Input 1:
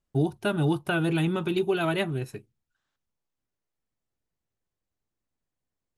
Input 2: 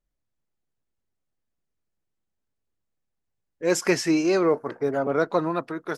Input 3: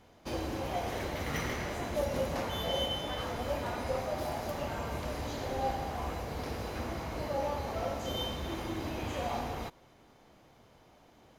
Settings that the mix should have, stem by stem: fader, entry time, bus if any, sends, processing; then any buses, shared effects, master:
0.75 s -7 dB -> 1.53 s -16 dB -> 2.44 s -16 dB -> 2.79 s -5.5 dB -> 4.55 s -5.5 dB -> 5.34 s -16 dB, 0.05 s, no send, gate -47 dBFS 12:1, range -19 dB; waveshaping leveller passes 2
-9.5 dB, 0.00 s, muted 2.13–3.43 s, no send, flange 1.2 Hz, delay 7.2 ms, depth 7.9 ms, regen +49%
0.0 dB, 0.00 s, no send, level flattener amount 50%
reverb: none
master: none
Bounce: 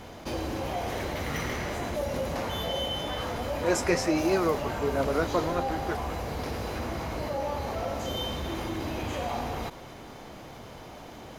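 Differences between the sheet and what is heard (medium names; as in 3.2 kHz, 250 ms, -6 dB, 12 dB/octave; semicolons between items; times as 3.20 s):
stem 1: muted; stem 2 -9.5 dB -> 0.0 dB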